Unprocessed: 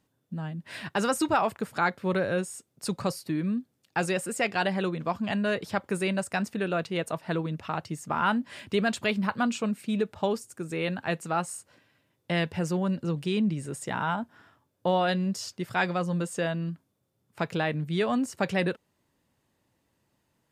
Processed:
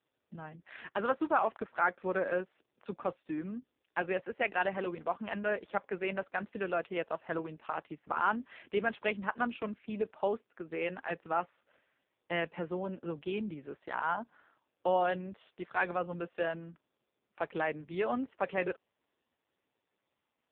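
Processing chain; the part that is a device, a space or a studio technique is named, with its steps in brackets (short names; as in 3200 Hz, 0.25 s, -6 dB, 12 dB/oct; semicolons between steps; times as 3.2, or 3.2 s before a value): telephone (BPF 330–3100 Hz; gain -2.5 dB; AMR-NB 4.75 kbps 8000 Hz)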